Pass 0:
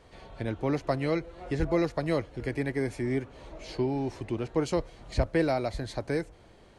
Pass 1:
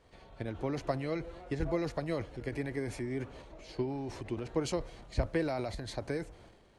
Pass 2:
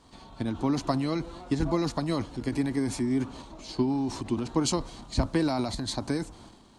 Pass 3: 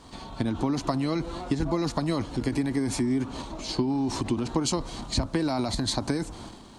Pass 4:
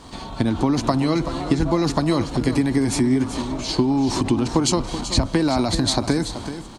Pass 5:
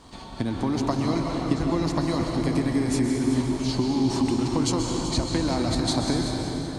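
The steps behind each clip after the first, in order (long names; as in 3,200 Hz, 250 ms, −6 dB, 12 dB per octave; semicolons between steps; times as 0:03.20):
transient designer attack +5 dB, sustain +9 dB; level −8.5 dB
octave-band graphic EQ 250/500/1,000/2,000/4,000/8,000 Hz +11/−8/+9/−6/+7/+9 dB; level +3.5 dB
downward compressor 4 to 1, threshold −32 dBFS, peak gain reduction 11 dB; level +8 dB
single-tap delay 381 ms −11 dB; level +7 dB
convolution reverb RT60 3.6 s, pre-delay 118 ms, DRR 1 dB; level −7 dB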